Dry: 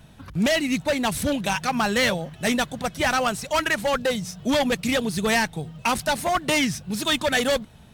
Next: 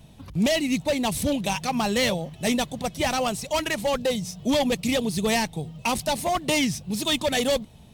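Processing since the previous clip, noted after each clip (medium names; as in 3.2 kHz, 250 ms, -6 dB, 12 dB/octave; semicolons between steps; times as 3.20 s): peaking EQ 1.5 kHz -11.5 dB 0.69 oct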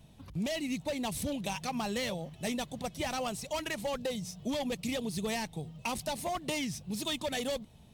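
compression, threshold -23 dBFS, peak gain reduction 5.5 dB; trim -7.5 dB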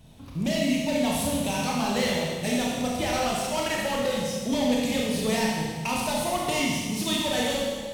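Schroeder reverb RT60 1.6 s, combs from 25 ms, DRR -4 dB; trim +3.5 dB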